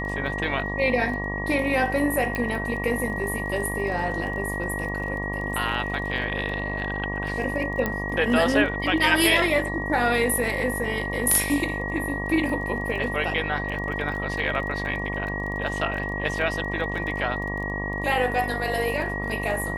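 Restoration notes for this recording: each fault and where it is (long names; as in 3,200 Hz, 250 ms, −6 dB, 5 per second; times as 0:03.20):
mains buzz 50 Hz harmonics 23 −31 dBFS
surface crackle 21 per second −33 dBFS
whistle 1,900 Hz −30 dBFS
0:02.35: click −14 dBFS
0:07.86: click −12 dBFS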